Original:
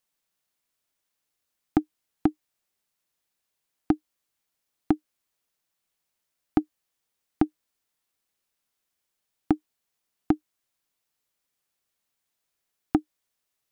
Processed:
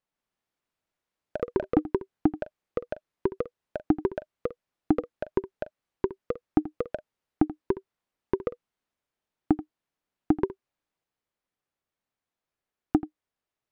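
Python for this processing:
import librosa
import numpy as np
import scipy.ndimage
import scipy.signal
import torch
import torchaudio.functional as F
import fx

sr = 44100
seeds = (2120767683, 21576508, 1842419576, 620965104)

p1 = fx.lowpass(x, sr, hz=1300.0, slope=6)
p2 = p1 + fx.echo_single(p1, sr, ms=83, db=-15.5, dry=0)
y = fx.echo_pitch(p2, sr, ms=157, semitones=4, count=3, db_per_echo=-3.0)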